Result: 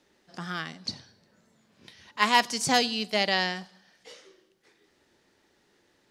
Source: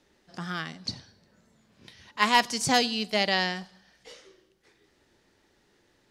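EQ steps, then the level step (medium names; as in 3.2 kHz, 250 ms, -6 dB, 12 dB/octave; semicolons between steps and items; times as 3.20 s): bass shelf 85 Hz -9.5 dB; hum notches 60/120 Hz; 0.0 dB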